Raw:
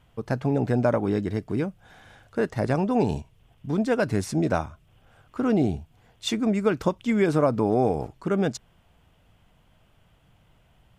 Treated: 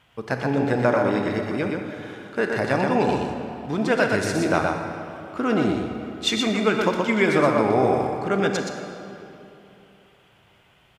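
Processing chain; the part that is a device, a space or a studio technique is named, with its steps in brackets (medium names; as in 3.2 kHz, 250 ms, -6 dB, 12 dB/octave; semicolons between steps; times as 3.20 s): PA in a hall (high-pass 170 Hz 6 dB/octave; peaking EQ 2.4 kHz +8 dB 2.6 oct; delay 122 ms -4.5 dB; reverberation RT60 2.9 s, pre-delay 25 ms, DRR 4.5 dB)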